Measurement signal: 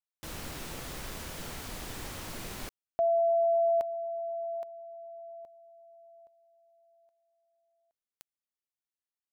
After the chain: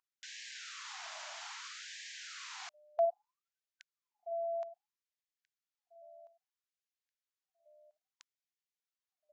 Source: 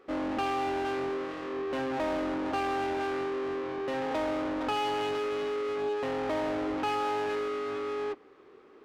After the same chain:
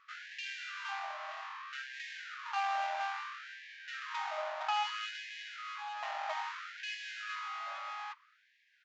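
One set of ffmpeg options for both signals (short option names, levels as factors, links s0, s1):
-af "aresample=16000,aresample=44100,aeval=exprs='val(0)+0.00126*sin(2*PI*600*n/s)':c=same,afftfilt=real='re*gte(b*sr/1024,570*pow(1600/570,0.5+0.5*sin(2*PI*0.61*pts/sr)))':imag='im*gte(b*sr/1024,570*pow(1600/570,0.5+0.5*sin(2*PI*0.61*pts/sr)))':win_size=1024:overlap=0.75,volume=0.891"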